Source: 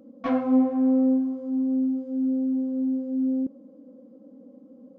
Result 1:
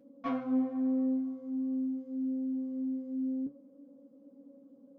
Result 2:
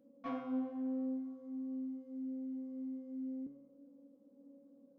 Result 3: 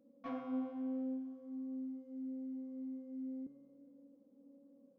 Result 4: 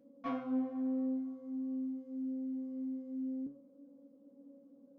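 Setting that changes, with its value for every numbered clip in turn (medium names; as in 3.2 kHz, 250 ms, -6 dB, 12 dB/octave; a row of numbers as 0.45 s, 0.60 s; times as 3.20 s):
feedback comb, decay: 0.18 s, 0.89 s, 1.9 s, 0.42 s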